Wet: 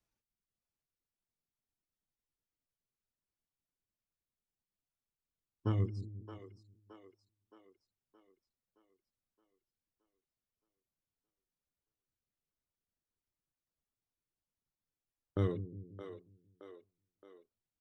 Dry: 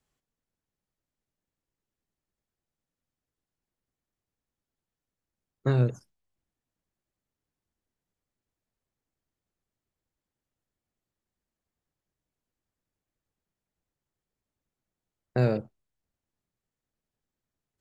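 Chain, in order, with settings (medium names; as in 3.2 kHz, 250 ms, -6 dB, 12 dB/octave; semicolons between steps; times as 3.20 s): reverb removal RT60 0.88 s; pitch shift -4 st; vibrato 2.9 Hz 7.1 cents; two-band feedback delay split 330 Hz, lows 179 ms, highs 620 ms, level -10 dB; trim -7.5 dB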